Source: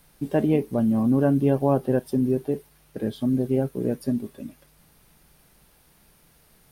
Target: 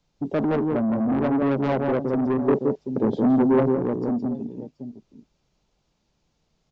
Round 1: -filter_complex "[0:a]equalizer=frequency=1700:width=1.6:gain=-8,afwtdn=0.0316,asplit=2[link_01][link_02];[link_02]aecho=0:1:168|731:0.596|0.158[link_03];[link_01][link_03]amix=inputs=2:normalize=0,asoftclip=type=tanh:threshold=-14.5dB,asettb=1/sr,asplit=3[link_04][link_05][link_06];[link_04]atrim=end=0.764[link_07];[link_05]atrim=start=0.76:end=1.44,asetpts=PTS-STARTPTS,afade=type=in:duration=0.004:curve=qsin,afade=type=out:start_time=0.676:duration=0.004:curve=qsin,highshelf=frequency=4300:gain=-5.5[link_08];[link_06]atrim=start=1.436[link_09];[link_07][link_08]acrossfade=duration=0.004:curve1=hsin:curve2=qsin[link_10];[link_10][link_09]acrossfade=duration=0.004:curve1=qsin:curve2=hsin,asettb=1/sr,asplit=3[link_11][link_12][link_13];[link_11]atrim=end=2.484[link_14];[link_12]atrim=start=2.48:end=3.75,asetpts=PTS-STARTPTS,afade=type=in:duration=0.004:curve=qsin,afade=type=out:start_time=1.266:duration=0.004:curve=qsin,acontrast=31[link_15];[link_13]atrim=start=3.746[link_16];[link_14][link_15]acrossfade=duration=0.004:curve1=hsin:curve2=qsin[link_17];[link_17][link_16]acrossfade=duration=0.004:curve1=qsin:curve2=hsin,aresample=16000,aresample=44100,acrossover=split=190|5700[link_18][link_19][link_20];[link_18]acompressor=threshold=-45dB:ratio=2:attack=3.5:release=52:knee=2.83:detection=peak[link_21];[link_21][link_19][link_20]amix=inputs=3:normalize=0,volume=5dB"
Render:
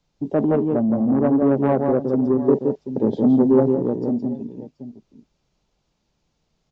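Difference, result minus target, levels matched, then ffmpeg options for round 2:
soft clipping: distortion −8 dB
-filter_complex "[0:a]equalizer=frequency=1700:width=1.6:gain=-8,afwtdn=0.0316,asplit=2[link_01][link_02];[link_02]aecho=0:1:168|731:0.596|0.158[link_03];[link_01][link_03]amix=inputs=2:normalize=0,asoftclip=type=tanh:threshold=-23dB,asettb=1/sr,asplit=3[link_04][link_05][link_06];[link_04]atrim=end=0.764[link_07];[link_05]atrim=start=0.76:end=1.44,asetpts=PTS-STARTPTS,afade=type=in:duration=0.004:curve=qsin,afade=type=out:start_time=0.676:duration=0.004:curve=qsin,highshelf=frequency=4300:gain=-5.5[link_08];[link_06]atrim=start=1.436[link_09];[link_07][link_08]acrossfade=duration=0.004:curve1=hsin:curve2=qsin[link_10];[link_10][link_09]acrossfade=duration=0.004:curve1=qsin:curve2=hsin,asettb=1/sr,asplit=3[link_11][link_12][link_13];[link_11]atrim=end=2.484[link_14];[link_12]atrim=start=2.48:end=3.75,asetpts=PTS-STARTPTS,afade=type=in:duration=0.004:curve=qsin,afade=type=out:start_time=1.266:duration=0.004:curve=qsin,acontrast=31[link_15];[link_13]atrim=start=3.746[link_16];[link_14][link_15]acrossfade=duration=0.004:curve1=hsin:curve2=qsin[link_17];[link_17][link_16]acrossfade=duration=0.004:curve1=qsin:curve2=hsin,aresample=16000,aresample=44100,acrossover=split=190|5700[link_18][link_19][link_20];[link_18]acompressor=threshold=-45dB:ratio=2:attack=3.5:release=52:knee=2.83:detection=peak[link_21];[link_21][link_19][link_20]amix=inputs=3:normalize=0,volume=5dB"

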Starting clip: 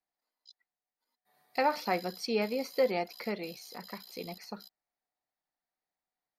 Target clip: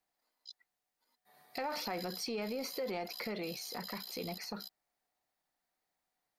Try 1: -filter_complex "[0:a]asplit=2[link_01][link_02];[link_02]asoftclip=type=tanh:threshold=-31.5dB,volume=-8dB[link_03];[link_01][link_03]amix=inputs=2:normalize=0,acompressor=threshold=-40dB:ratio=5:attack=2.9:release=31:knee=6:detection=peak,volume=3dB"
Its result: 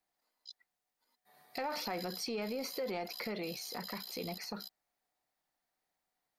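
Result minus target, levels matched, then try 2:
soft clipping: distortion −4 dB
-filter_complex "[0:a]asplit=2[link_01][link_02];[link_02]asoftclip=type=tanh:threshold=-38.5dB,volume=-8dB[link_03];[link_01][link_03]amix=inputs=2:normalize=0,acompressor=threshold=-40dB:ratio=5:attack=2.9:release=31:knee=6:detection=peak,volume=3dB"

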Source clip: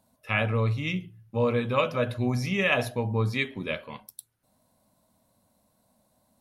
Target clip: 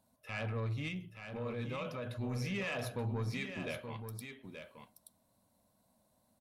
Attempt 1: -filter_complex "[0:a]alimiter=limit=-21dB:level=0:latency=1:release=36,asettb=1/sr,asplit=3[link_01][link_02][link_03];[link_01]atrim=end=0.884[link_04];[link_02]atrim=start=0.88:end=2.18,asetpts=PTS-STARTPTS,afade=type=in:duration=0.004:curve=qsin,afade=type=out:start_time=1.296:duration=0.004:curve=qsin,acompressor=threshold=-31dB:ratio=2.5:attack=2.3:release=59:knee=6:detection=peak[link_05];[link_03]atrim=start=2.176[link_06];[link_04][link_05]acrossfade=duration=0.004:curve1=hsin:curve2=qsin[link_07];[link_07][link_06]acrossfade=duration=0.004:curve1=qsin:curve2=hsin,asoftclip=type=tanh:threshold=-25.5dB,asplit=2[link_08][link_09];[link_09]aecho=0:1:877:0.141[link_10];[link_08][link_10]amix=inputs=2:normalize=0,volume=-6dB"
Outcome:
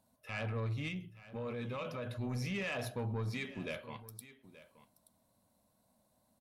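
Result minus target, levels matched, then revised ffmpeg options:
echo-to-direct −9 dB
-filter_complex "[0:a]alimiter=limit=-21dB:level=0:latency=1:release=36,asettb=1/sr,asplit=3[link_01][link_02][link_03];[link_01]atrim=end=0.884[link_04];[link_02]atrim=start=0.88:end=2.18,asetpts=PTS-STARTPTS,afade=type=in:duration=0.004:curve=qsin,afade=type=out:start_time=1.296:duration=0.004:curve=qsin,acompressor=threshold=-31dB:ratio=2.5:attack=2.3:release=59:knee=6:detection=peak[link_05];[link_03]atrim=start=2.176[link_06];[link_04][link_05]acrossfade=duration=0.004:curve1=hsin:curve2=qsin[link_07];[link_07][link_06]acrossfade=duration=0.004:curve1=qsin:curve2=hsin,asoftclip=type=tanh:threshold=-25.5dB,asplit=2[link_08][link_09];[link_09]aecho=0:1:877:0.398[link_10];[link_08][link_10]amix=inputs=2:normalize=0,volume=-6dB"

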